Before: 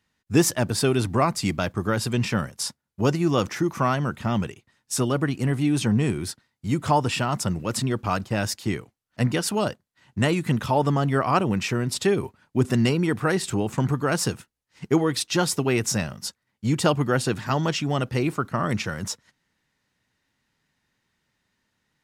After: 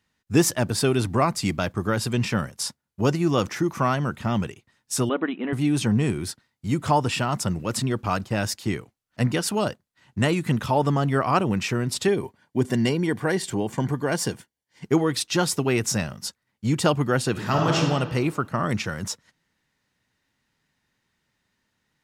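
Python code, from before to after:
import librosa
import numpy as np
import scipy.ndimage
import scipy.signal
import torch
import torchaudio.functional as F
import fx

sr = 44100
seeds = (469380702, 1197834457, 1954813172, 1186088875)

y = fx.brickwall_bandpass(x, sr, low_hz=180.0, high_hz=4000.0, at=(5.09, 5.53))
y = fx.notch_comb(y, sr, f0_hz=1300.0, at=(12.08, 14.86))
y = fx.reverb_throw(y, sr, start_s=17.31, length_s=0.46, rt60_s=1.5, drr_db=-1.0)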